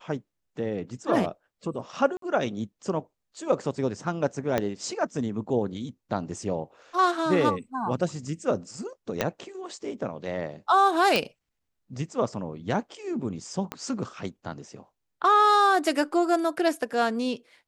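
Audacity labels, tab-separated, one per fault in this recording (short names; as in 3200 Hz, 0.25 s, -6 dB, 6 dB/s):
2.170000	2.220000	gap 53 ms
4.580000	4.580000	pop -11 dBFS
9.210000	9.210000	pop -9 dBFS
11.160000	11.160000	pop -8 dBFS
13.720000	13.720000	pop -16 dBFS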